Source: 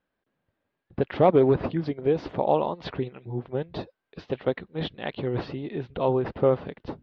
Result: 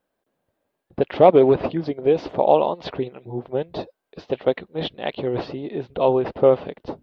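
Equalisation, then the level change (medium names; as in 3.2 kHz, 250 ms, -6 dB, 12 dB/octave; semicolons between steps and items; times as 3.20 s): FFT filter 130 Hz 0 dB, 640 Hz +9 dB, 1.7 kHz -1 dB; dynamic bell 2.7 kHz, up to +7 dB, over -41 dBFS, Q 1.3; treble shelf 4.1 kHz +11.5 dB; -1.5 dB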